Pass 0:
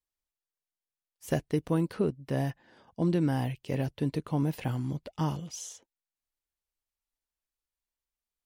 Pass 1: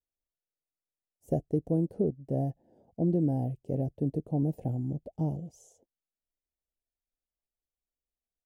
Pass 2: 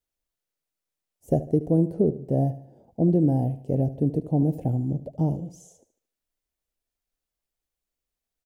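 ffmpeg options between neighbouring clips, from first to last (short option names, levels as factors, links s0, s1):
-af "firequalizer=gain_entry='entry(710,0);entry(1100,-29);entry(4000,-28);entry(6900,-15)':delay=0.05:min_phase=1"
-af "aecho=1:1:74|148|222|296:0.178|0.0747|0.0314|0.0132,volume=2.11"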